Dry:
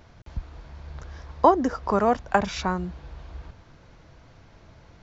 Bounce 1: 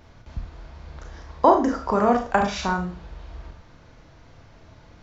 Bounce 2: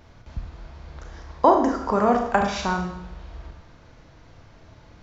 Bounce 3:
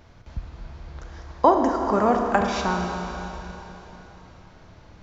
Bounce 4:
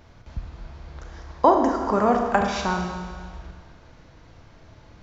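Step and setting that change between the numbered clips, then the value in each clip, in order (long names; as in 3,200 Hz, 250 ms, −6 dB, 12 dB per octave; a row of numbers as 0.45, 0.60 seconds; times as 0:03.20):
four-comb reverb, RT60: 0.37, 0.78, 3.6, 1.7 seconds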